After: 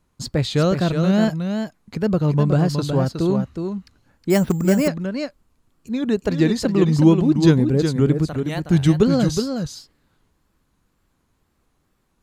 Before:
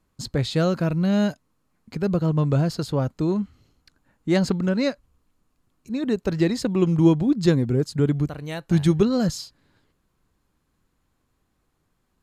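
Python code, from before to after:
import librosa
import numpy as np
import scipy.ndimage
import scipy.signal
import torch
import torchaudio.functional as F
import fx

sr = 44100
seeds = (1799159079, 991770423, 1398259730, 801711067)

p1 = fx.wow_flutter(x, sr, seeds[0], rate_hz=2.1, depth_cents=120.0)
p2 = p1 + fx.echo_single(p1, sr, ms=367, db=-6.5, dry=0)
p3 = fx.resample_bad(p2, sr, factor=6, down='filtered', up='hold', at=(4.3, 4.88))
y = p3 * librosa.db_to_amplitude(3.0)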